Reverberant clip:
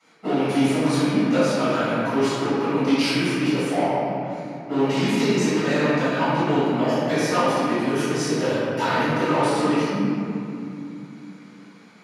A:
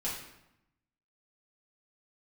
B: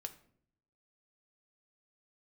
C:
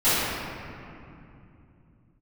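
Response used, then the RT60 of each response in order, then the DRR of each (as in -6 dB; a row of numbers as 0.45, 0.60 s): C; 0.85, 0.60, 2.7 s; -7.5, 6.5, -17.5 dB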